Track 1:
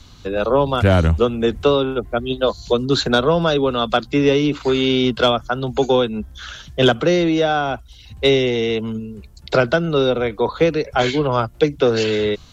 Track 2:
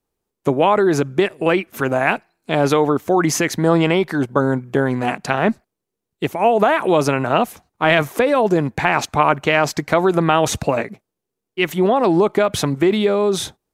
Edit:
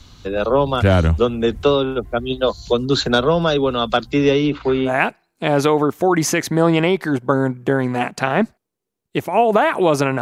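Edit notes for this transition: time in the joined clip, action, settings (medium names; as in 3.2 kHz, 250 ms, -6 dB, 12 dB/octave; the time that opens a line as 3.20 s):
track 1
4.31–4.92 s: low-pass 6 kHz -> 1.5 kHz
4.88 s: go over to track 2 from 1.95 s, crossfade 0.08 s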